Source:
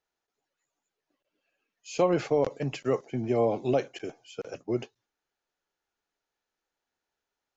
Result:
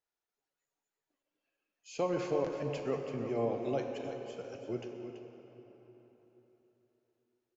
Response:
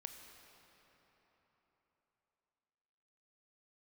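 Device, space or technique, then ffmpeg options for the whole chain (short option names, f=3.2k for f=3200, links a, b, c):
cave: -filter_complex "[0:a]aecho=1:1:332:0.335[a];[1:a]atrim=start_sample=2205[b];[a][b]afir=irnorm=-1:irlink=0,volume=-3dB"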